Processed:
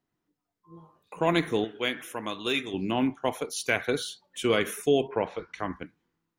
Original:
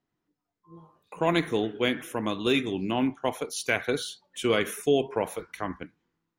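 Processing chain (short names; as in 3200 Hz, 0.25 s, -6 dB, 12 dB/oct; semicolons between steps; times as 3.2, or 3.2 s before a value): 1.64–2.74 low shelf 470 Hz -10 dB; 5.07–5.58 LPF 3000 Hz -> 7100 Hz 24 dB/oct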